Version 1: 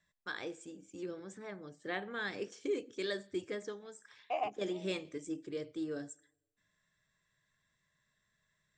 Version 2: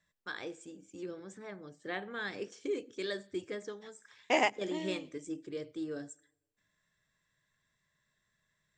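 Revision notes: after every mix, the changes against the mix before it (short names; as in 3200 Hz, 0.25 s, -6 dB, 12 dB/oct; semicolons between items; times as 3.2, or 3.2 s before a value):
second voice: remove vowel filter a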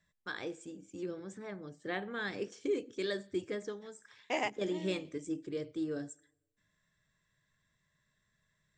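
first voice: add low shelf 300 Hz +5.5 dB; second voice -6.0 dB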